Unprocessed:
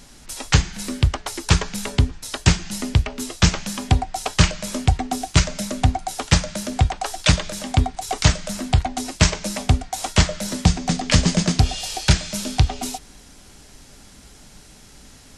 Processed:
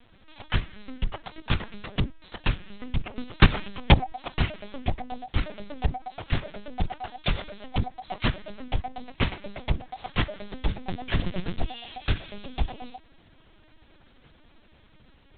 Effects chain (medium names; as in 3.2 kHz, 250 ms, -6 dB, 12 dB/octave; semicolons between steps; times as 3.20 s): 3.09–4.13 s: transient shaper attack +11 dB, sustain +7 dB; LPC vocoder at 8 kHz pitch kept; trim -8.5 dB